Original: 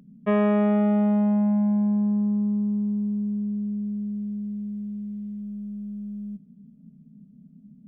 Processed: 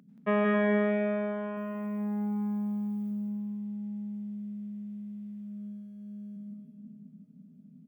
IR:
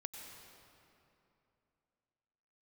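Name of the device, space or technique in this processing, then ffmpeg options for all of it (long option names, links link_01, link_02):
stadium PA: -filter_complex "[0:a]asettb=1/sr,asplit=3[link_01][link_02][link_03];[link_01]atrim=end=1.574[link_04];[link_02]atrim=start=1.57:end=3.11,asetpts=PTS-STARTPTS,afade=type=in:duration=0.004:curve=qsin,afade=type=out:start_time=1.536:duration=0.004:curve=qsin,aemphasis=mode=production:type=75fm[link_05];[link_03]atrim=start=3.106[link_06];[link_04][link_05]acrossfade=duration=0.004:curve1=hsin:curve2=qsin[link_07];[link_07][link_06]acrossfade=duration=0.004:curve1=qsin:curve2=hsin,highpass=frequency=190:poles=1,equalizer=frequency=1700:width_type=o:width=1.3:gain=4.5,aecho=1:1:177.8|268.2:0.631|0.355[link_08];[1:a]atrim=start_sample=2205[link_09];[link_08][link_09]afir=irnorm=-1:irlink=0"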